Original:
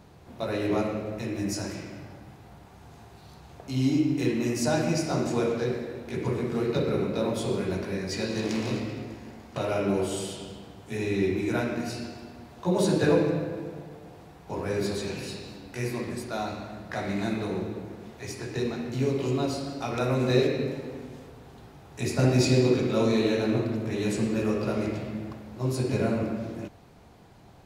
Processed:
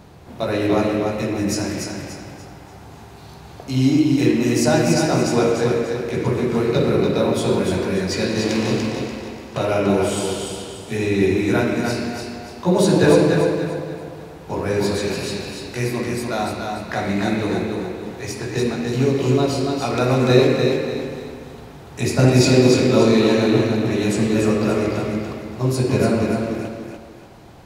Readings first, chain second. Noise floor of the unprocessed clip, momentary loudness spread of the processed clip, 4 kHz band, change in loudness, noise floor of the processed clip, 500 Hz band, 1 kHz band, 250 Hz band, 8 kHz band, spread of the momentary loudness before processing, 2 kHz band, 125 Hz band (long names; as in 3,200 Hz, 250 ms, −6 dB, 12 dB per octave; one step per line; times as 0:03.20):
−51 dBFS, 15 LU, +9.5 dB, +8.5 dB, −40 dBFS, +9.0 dB, +9.5 dB, +9.0 dB, +9.5 dB, 16 LU, +9.5 dB, +8.0 dB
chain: feedback echo with a high-pass in the loop 291 ms, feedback 36%, high-pass 170 Hz, level −4.5 dB
level +8 dB